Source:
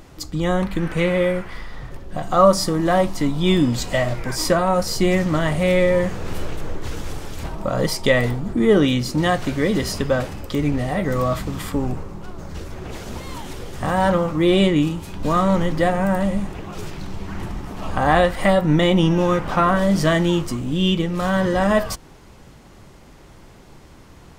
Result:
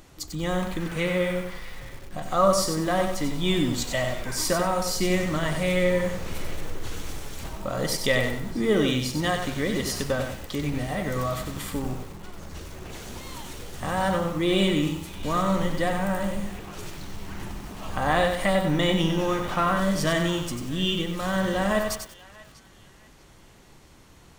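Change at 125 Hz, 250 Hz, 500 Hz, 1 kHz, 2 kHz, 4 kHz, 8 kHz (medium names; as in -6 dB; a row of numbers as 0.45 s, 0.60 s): -7.0 dB, -7.0 dB, -6.5 dB, -6.0 dB, -4.0 dB, -2.5 dB, -0.5 dB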